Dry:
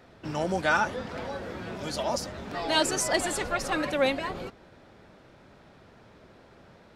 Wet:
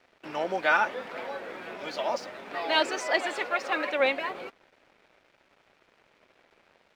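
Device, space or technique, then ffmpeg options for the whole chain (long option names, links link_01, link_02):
pocket radio on a weak battery: -filter_complex "[0:a]asettb=1/sr,asplit=3[link_01][link_02][link_03];[link_01]atrim=end=2.904[link_04];[link_02]atrim=start=2.9:end=4,asetpts=PTS-STARTPTS,afade=type=in:duration=0.004:curve=qsin,afade=type=out:start_time=1.096:duration=0.004:curve=qsin,highpass=230[link_05];[link_03]atrim=start=3.996[link_06];[link_04][link_05]acrossfade=duration=0.004:curve1=hsin:curve2=qsin[link_07];[link_07][link_06]acrossfade=duration=0.004:curve1=qsin:curve2=hsin,highpass=390,lowpass=3600,aeval=exprs='sgn(val(0))*max(abs(val(0))-0.00141,0)':channel_layout=same,equalizer=frequency=2300:width_type=o:width=0.52:gain=5,volume=1dB"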